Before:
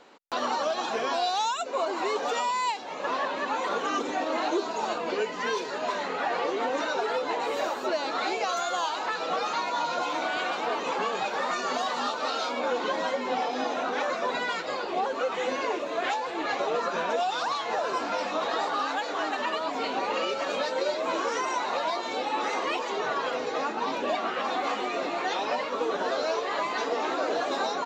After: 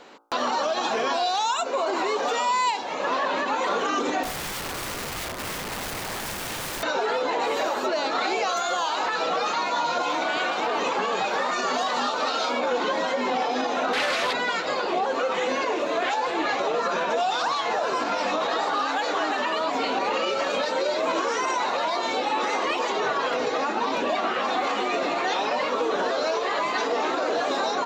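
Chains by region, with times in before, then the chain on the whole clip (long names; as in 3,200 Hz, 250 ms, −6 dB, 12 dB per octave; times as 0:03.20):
0:04.23–0:06.83: running median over 25 samples + mains-hum notches 50/100/150/200/250/300 Hz + wrap-around overflow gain 34 dB
0:13.93–0:14.33: linear delta modulator 64 kbit/s, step −44.5 dBFS + meter weighting curve D + highs frequency-modulated by the lows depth 0.22 ms
whole clip: hum removal 57.06 Hz, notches 28; brickwall limiter −23.5 dBFS; level +7 dB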